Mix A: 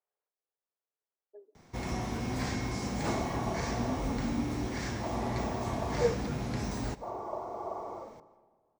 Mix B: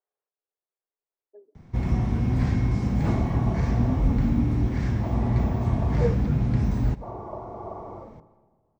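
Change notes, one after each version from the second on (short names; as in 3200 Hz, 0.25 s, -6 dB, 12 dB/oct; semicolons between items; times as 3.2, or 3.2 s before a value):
master: add tone controls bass +15 dB, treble -11 dB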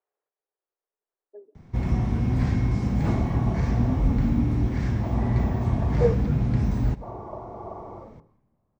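speech +5.0 dB; second sound: send off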